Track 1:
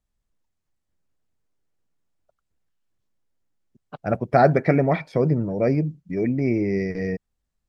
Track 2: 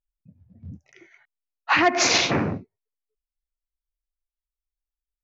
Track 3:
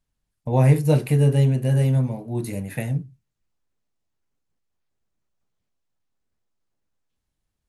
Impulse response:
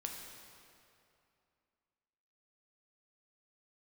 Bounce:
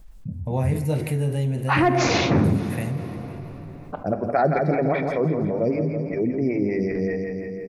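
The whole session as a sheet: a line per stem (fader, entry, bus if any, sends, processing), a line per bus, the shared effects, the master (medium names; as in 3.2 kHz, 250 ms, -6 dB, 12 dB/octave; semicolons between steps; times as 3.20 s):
-7.5 dB, 0.00 s, send -7 dB, echo send -6 dB, lamp-driven phase shifter 5.1 Hz
-5.5 dB, 0.00 s, send -8 dB, no echo send, tilt EQ -3.5 dB/octave
-13.5 dB, 0.00 s, send -10 dB, echo send -18.5 dB, none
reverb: on, RT60 2.6 s, pre-delay 4 ms
echo: feedback delay 167 ms, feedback 52%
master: level flattener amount 50%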